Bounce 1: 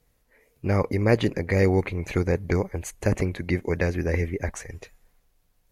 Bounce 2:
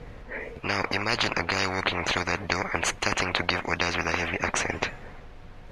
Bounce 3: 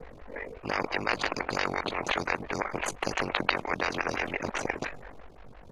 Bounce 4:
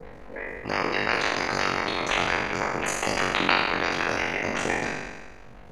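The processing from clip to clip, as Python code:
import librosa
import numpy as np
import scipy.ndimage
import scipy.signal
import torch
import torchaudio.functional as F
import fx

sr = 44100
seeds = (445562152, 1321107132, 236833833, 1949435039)

y1 = scipy.signal.sosfilt(scipy.signal.butter(2, 2400.0, 'lowpass', fs=sr, output='sos'), x)
y1 = fx.spectral_comp(y1, sr, ratio=10.0)
y1 = y1 * librosa.db_to_amplitude(4.5)
y2 = y1 * np.sin(2.0 * np.pi * 24.0 * np.arange(len(y1)) / sr)
y2 = fx.stagger_phaser(y2, sr, hz=5.8)
y2 = y2 * librosa.db_to_amplitude(3.0)
y3 = fx.spec_trails(y2, sr, decay_s=1.32)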